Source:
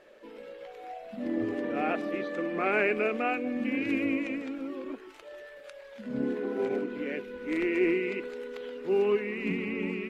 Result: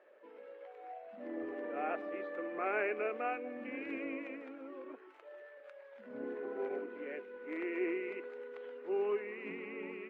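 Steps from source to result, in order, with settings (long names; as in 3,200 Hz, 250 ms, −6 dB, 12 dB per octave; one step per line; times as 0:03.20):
three-way crossover with the lows and the highs turned down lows −23 dB, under 330 Hz, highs −19 dB, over 2,300 Hz
level −5.5 dB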